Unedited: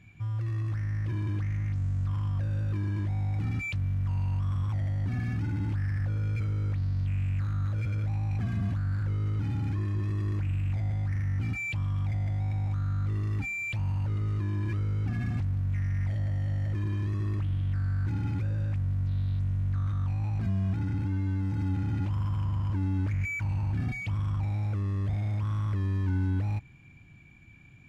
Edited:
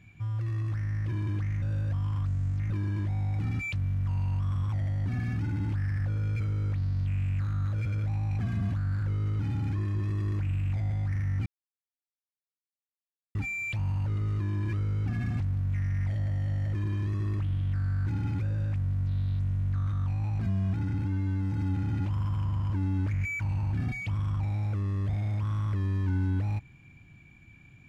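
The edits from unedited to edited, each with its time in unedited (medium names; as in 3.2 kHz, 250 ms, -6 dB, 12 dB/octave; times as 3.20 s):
1.62–2.70 s: reverse
11.46–13.35 s: mute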